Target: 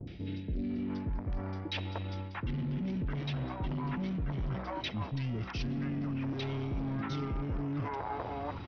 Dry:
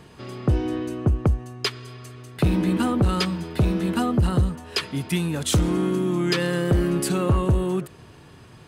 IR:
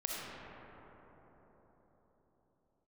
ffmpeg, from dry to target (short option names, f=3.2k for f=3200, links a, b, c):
-filter_complex "[0:a]aresample=16000,asoftclip=type=tanh:threshold=-24dB,aresample=44100,acrossover=split=650|2600[a][b][c];[c]adelay=70[d];[b]adelay=700[e];[a][e][d]amix=inputs=3:normalize=0,areverse,acompressor=threshold=-40dB:ratio=6,areverse,lowpass=5.6k,asetrate=34006,aresample=44100,atempo=1.29684,agate=range=-22dB:threshold=-52dB:ratio=16:detection=peak,volume=6.5dB"